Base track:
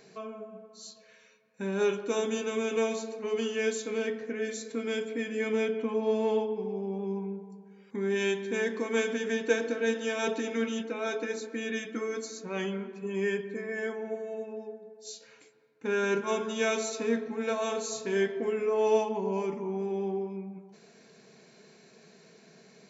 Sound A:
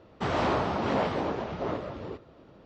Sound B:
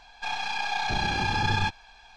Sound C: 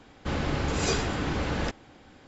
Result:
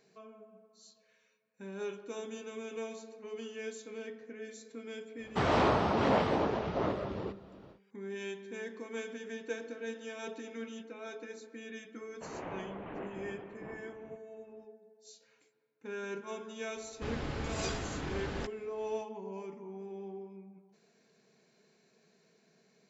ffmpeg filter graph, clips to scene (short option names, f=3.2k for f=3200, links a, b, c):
-filter_complex "[1:a]asplit=2[a][b];[0:a]volume=-12dB[c];[b]highpass=f=400:t=q:w=0.5412,highpass=f=400:t=q:w=1.307,lowpass=f=3k:t=q:w=0.5176,lowpass=f=3k:t=q:w=0.7071,lowpass=f=3k:t=q:w=1.932,afreqshift=-240[d];[a]atrim=end=2.65,asetpts=PTS-STARTPTS,volume=-0.5dB,afade=t=in:d=0.1,afade=t=out:st=2.55:d=0.1,adelay=5150[e];[d]atrim=end=2.65,asetpts=PTS-STARTPTS,volume=-14dB,afade=t=in:d=0.004:c=hsin,afade=t=out:st=2.646:d=0.004:c=hsin,adelay=12000[f];[3:a]atrim=end=2.27,asetpts=PTS-STARTPTS,volume=-9.5dB,afade=t=in:d=0.004:c=hsin,afade=t=out:st=2.266:d=0.004:c=hsin,adelay=16760[g];[c][e][f][g]amix=inputs=4:normalize=0"